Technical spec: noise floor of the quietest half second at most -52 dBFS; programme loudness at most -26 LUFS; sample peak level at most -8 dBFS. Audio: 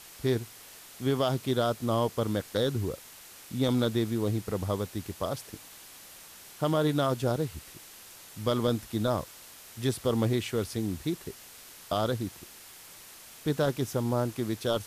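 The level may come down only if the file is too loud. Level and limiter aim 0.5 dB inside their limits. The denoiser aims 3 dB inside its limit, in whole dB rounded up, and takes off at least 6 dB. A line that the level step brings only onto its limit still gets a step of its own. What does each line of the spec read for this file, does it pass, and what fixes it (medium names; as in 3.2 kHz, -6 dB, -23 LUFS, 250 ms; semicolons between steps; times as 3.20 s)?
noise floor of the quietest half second -50 dBFS: fail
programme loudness -30.0 LUFS: pass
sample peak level -15.5 dBFS: pass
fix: noise reduction 6 dB, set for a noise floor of -50 dBFS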